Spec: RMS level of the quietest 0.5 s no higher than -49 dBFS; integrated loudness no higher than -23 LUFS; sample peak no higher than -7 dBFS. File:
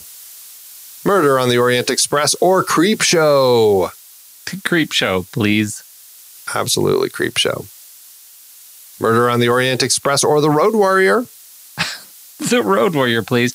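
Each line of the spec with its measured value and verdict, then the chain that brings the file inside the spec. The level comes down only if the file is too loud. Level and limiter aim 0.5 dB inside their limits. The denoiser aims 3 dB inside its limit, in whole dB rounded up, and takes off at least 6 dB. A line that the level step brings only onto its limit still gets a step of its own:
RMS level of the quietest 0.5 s -42 dBFS: fail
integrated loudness -15.0 LUFS: fail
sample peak -3.5 dBFS: fail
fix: trim -8.5 dB

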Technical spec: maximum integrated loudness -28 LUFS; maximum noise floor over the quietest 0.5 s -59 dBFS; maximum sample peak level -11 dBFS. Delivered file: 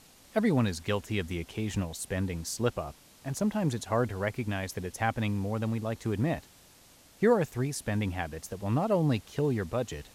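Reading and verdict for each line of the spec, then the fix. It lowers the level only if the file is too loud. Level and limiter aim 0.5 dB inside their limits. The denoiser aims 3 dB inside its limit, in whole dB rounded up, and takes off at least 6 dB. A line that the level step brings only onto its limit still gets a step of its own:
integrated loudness -31.0 LUFS: pass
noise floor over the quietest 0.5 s -57 dBFS: fail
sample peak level -13.0 dBFS: pass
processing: noise reduction 6 dB, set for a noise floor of -57 dBFS

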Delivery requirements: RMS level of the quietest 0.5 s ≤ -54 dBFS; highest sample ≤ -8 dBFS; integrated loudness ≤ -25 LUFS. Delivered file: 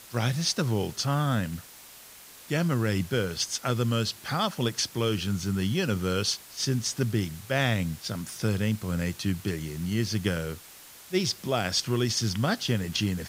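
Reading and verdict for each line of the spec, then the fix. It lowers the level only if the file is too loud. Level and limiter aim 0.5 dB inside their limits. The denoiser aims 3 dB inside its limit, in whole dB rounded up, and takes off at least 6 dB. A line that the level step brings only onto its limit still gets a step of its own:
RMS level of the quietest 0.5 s -49 dBFS: fail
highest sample -11.5 dBFS: pass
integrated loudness -28.0 LUFS: pass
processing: noise reduction 8 dB, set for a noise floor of -49 dBFS

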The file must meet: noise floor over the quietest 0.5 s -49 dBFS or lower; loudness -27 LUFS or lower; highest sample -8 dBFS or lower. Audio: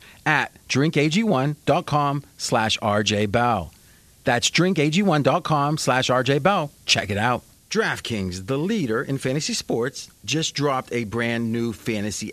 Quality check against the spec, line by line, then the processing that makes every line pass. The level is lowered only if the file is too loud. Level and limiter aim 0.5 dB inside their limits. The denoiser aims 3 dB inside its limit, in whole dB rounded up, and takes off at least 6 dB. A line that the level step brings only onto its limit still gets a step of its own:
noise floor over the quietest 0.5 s -52 dBFS: pass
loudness -22.0 LUFS: fail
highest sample -3.5 dBFS: fail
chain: trim -5.5 dB

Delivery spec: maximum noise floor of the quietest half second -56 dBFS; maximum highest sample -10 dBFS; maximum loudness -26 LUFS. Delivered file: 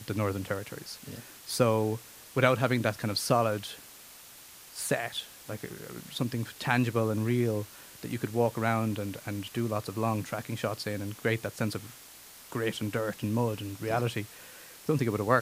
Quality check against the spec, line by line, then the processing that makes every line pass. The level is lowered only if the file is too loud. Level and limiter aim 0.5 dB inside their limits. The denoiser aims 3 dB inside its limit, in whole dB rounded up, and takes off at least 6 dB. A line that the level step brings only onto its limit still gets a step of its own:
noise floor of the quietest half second -51 dBFS: fail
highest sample -6.0 dBFS: fail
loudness -31.0 LUFS: pass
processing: noise reduction 8 dB, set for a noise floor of -51 dBFS; peak limiter -10.5 dBFS

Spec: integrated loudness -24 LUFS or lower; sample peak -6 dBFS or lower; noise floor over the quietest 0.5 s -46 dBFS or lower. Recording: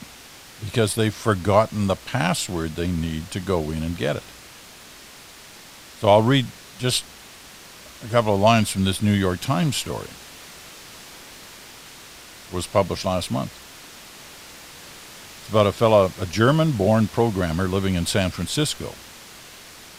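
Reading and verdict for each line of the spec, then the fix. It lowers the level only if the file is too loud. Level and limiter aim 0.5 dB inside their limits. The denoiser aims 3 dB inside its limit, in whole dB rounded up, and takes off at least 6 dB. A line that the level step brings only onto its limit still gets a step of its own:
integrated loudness -22.0 LUFS: fail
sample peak -2.0 dBFS: fail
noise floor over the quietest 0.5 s -44 dBFS: fail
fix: trim -2.5 dB; peak limiter -6.5 dBFS

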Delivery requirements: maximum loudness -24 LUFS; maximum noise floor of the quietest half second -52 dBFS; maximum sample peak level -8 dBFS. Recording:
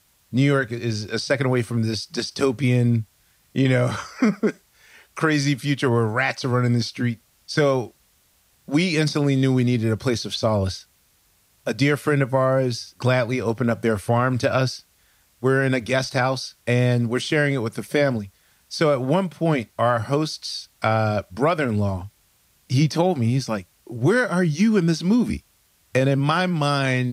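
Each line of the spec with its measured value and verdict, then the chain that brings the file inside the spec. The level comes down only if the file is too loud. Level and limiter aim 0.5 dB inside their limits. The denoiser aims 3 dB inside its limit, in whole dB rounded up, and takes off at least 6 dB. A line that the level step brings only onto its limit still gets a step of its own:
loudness -22.0 LUFS: fail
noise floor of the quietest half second -61 dBFS: pass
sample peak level -6.0 dBFS: fail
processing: trim -2.5 dB

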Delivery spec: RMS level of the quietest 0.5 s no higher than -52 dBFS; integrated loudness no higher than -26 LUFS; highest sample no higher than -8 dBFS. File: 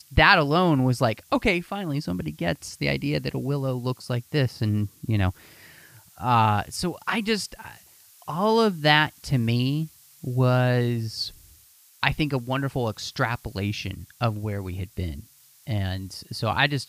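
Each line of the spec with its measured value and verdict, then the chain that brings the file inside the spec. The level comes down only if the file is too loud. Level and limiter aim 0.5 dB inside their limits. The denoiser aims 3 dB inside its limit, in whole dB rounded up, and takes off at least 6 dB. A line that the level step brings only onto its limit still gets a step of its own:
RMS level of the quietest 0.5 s -55 dBFS: pass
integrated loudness -25.0 LUFS: fail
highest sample -2.5 dBFS: fail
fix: trim -1.5 dB; peak limiter -8.5 dBFS

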